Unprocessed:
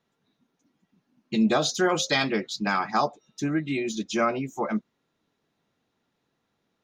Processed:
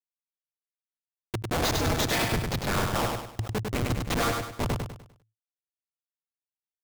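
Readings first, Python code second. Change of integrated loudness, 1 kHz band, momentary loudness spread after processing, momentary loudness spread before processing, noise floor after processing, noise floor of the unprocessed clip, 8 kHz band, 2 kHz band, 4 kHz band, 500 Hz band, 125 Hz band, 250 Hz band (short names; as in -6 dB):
-2.5 dB, -3.0 dB, 9 LU, 8 LU, under -85 dBFS, -77 dBFS, 0.0 dB, -2.5 dB, -1.0 dB, -3.5 dB, +6.5 dB, -6.0 dB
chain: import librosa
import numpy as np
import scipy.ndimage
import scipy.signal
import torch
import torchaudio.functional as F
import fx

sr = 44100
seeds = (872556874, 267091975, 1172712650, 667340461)

p1 = fx.highpass(x, sr, hz=1200.0, slope=6)
p2 = fx.rider(p1, sr, range_db=5, speed_s=2.0)
p3 = p1 + (p2 * librosa.db_to_amplitude(1.5))
p4 = fx.schmitt(p3, sr, flips_db=-21.0)
p5 = p4 * np.sin(2.0 * np.pi * 110.0 * np.arange(len(p4)) / sr)
p6 = 10.0 ** (-26.5 / 20.0) * np.tanh(p5 / 10.0 ** (-26.5 / 20.0))
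p7 = p6 + fx.echo_feedback(p6, sr, ms=100, feedback_pct=37, wet_db=-4.0, dry=0)
p8 = fx.sustainer(p7, sr, db_per_s=130.0)
y = p8 * librosa.db_to_amplitude(6.0)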